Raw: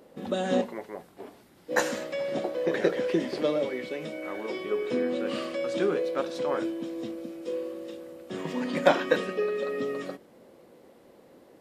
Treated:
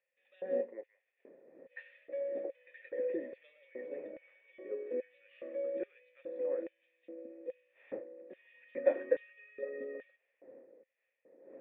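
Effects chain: wind noise 510 Hz -41 dBFS; LFO high-pass square 1.2 Hz 290–2900 Hz; vocal tract filter e; gain -5 dB

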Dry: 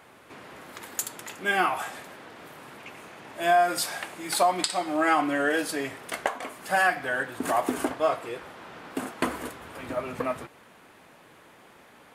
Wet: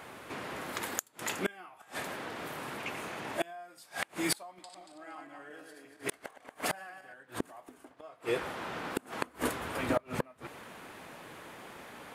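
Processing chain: 4.46–7.14 regenerating reverse delay 0.116 s, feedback 51%, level -3 dB; flipped gate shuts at -22 dBFS, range -31 dB; gain +5 dB

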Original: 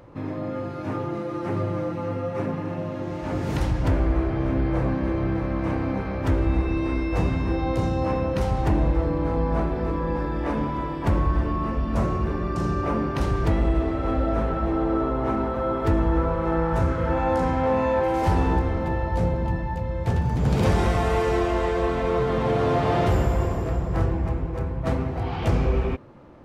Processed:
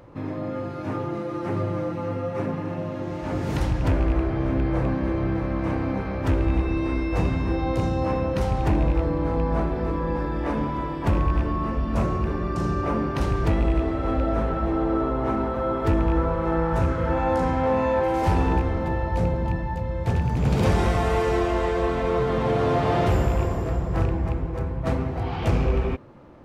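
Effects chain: rattling part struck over -17 dBFS, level -29 dBFS

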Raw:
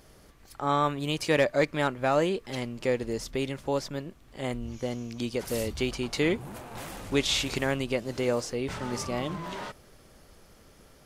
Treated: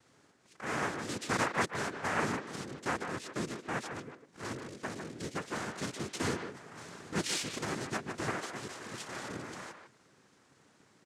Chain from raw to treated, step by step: rattling part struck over -35 dBFS, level -29 dBFS; 8.29–9.28 low shelf 280 Hz -11.5 dB; noise vocoder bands 3; speakerphone echo 0.15 s, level -7 dB; gain -8 dB

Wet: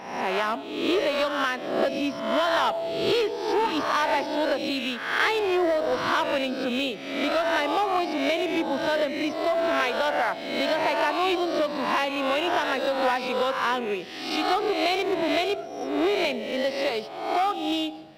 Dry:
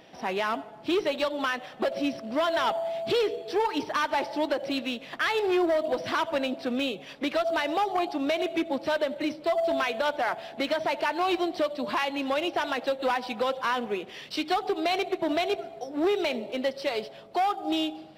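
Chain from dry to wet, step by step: spectral swells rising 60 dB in 0.88 s

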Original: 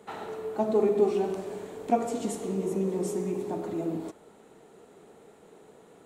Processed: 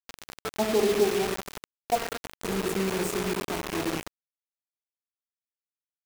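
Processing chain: rattling part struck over -41 dBFS, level -33 dBFS; 1.8–2.42 three-band isolator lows -23 dB, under 350 Hz, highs -17 dB, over 3700 Hz; bit-crush 5-bit

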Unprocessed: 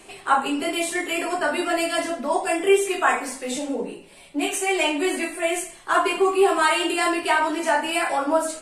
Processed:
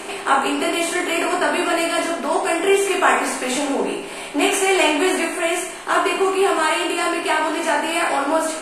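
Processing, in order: per-bin compression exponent 0.6; vocal rider 2 s; gain -1 dB

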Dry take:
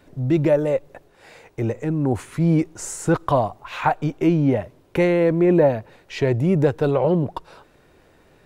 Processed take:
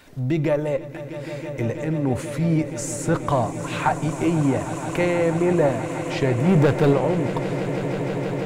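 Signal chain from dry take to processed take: bell 430 Hz -3.5 dB 1.9 oct; 6.46–6.93 sample leveller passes 2; in parallel at -11 dB: one-sided clip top -27.5 dBFS; on the sum: swelling echo 0.161 s, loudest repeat 8, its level -16 dB; on a send at -13 dB: reverb RT60 0.55 s, pre-delay 3 ms; on the sum: mismatched tape noise reduction encoder only; gain -2 dB

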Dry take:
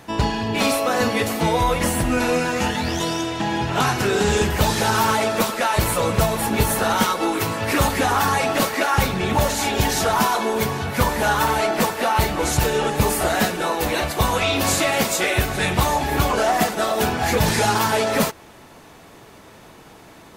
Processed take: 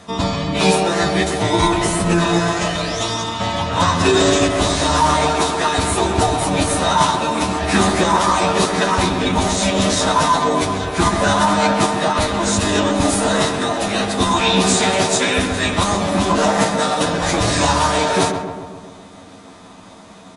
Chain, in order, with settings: LPF 8700 Hz 12 dB/oct; high shelf 5200 Hz +9 dB; notches 60/120/180/240/300/360/420/480/540 Hz; comb 7.5 ms, depth 93%; small resonant body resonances 320/980/3700 Hz, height 10 dB, ringing for 25 ms; formant-preserving pitch shift -6.5 st; on a send: darkening echo 0.133 s, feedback 64%, low-pass 1600 Hz, level -6 dB; on the sum: gain -2.5 dB

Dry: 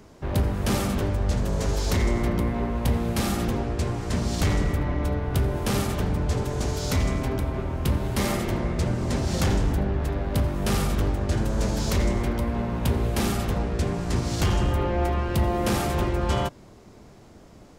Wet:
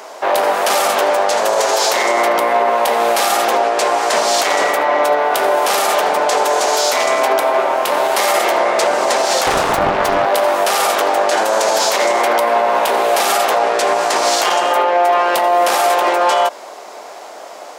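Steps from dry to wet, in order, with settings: ladder high-pass 550 Hz, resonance 40%; maximiser +32.5 dB; 9.45–10.26 Doppler distortion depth 0.61 ms; gain -4.5 dB

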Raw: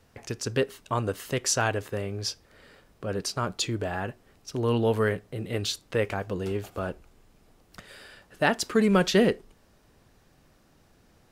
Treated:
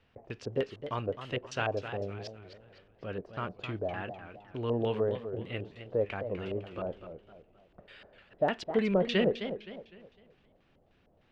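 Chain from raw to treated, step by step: LFO low-pass square 3.3 Hz 630–2900 Hz; warbling echo 0.256 s, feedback 37%, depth 184 cents, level -10 dB; gain -8 dB

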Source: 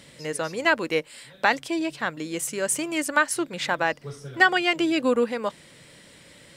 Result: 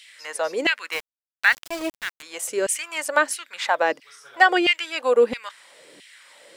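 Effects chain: LFO high-pass saw down 1.5 Hz 270–2800 Hz; 0.92–2.23 sample gate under -30.5 dBFS

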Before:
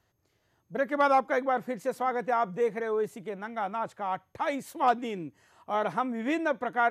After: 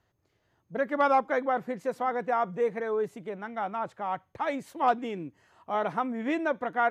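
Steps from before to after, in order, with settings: high shelf 6000 Hz -10 dB

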